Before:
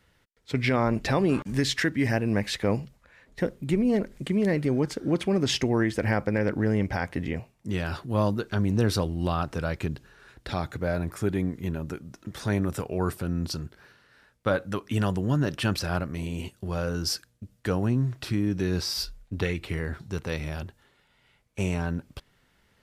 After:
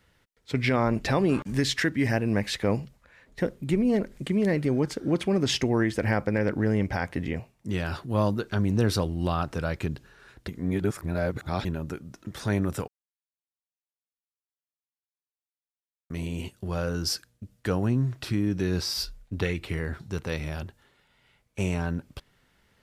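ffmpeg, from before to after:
-filter_complex "[0:a]asplit=5[s0][s1][s2][s3][s4];[s0]atrim=end=10.482[s5];[s1]atrim=start=10.478:end=11.652,asetpts=PTS-STARTPTS,areverse[s6];[s2]atrim=start=11.648:end=12.88,asetpts=PTS-STARTPTS,afade=t=out:st=1.228:d=0.004:c=hsin[s7];[s3]atrim=start=12.88:end=16.1,asetpts=PTS-STARTPTS,volume=0[s8];[s4]atrim=start=16.1,asetpts=PTS-STARTPTS,afade=t=in:d=0.004:c=hsin[s9];[s5][s6]acrossfade=d=0.004:c1=hsin:c2=hsin[s10];[s7][s8][s9]concat=n=3:v=0:a=1[s11];[s10][s11]acrossfade=d=0.004:c1=hsin:c2=hsin"

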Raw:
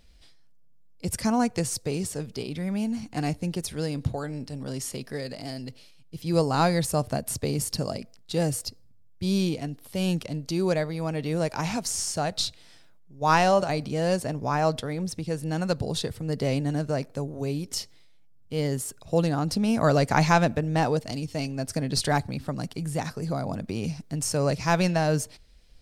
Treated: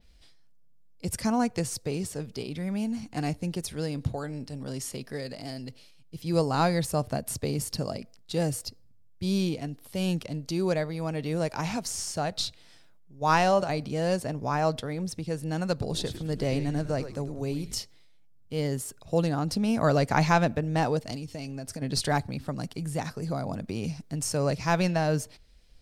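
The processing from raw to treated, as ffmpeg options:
-filter_complex "[0:a]asettb=1/sr,asplit=3[s0][s1][s2];[s0]atrim=end=15.724[s3];[s1]atrim=start=15.72:end=17.8,asetpts=PTS-STARTPTS,afade=t=in:d=0.004:c=qsin,afade=t=out:st=2.076:d=0.004:c=qsin,asplit=5[s4][s5][s6][s7][s8];[s5]adelay=102,afreqshift=-130,volume=0.316[s9];[s6]adelay=204,afreqshift=-260,volume=0.114[s10];[s7]adelay=306,afreqshift=-390,volume=0.0412[s11];[s8]adelay=408,afreqshift=-520,volume=0.0148[s12];[s4][s9][s10][s11][s12]amix=inputs=5:normalize=0,atrim=end_sample=91728[s13];[s2]atrim=start=17.796[s14];[s3][s13]acrossfade=d=0.004:c1=hsin:c2=qsin[s15];[s15][s14]acrossfade=d=0.004:c1=qsin:c2=hsin,asettb=1/sr,asplit=3[s16][s17][s18];[s16]atrim=end=21.154[s19];[s17]atrim=start=21.15:end=21.82,asetpts=PTS-STARTPTS,afade=t=in:d=0.004:c=qsin,afade=t=out:st=0.666:d=0.004:c=qsin,acompressor=threshold=0.0316:ratio=6:attack=3.2:release=140:knee=1:detection=peak[s20];[s18]atrim=start=21.816[s21];[s19][s20]acrossfade=d=0.004:c1=hsin:c2=qsin[s22];[s22][s21]acrossfade=d=0.004:c1=qsin:c2=hsin,adynamicequalizer=threshold=0.00501:dfrequency=8500:dqfactor=0.78:tfrequency=8500:tqfactor=0.78:attack=5:release=100:ratio=0.375:range=2:mode=cutabove:tftype=bell,volume=0.794"

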